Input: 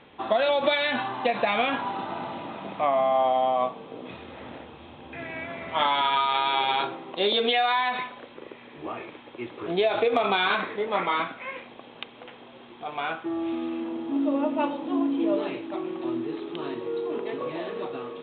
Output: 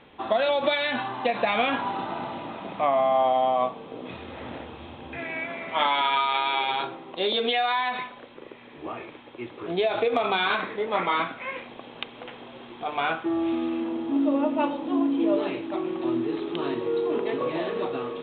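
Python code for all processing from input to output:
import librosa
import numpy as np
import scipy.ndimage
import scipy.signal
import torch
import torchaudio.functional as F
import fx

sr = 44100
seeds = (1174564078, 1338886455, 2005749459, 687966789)

y = fx.chain(x, sr, fx.highpass(hz=180.0, slope=12),
    fx.peak_eq(hz=2300.0, db=4.5, octaves=0.25), at=(5.18, 6.7))
y = fx.low_shelf(y, sr, hz=91.0, db=5.5)
y = fx.hum_notches(y, sr, base_hz=50, count=4)
y = fx.rider(y, sr, range_db=4, speed_s=2.0)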